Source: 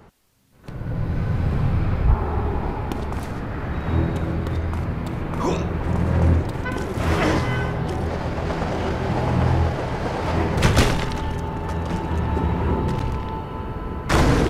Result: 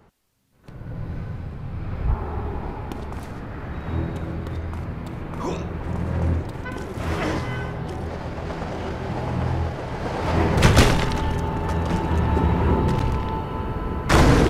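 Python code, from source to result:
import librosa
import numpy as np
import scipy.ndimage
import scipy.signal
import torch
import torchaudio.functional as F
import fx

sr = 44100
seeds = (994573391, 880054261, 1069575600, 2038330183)

y = fx.gain(x, sr, db=fx.line((1.14, -6.5), (1.59, -13.0), (2.06, -5.0), (9.82, -5.0), (10.46, 2.0)))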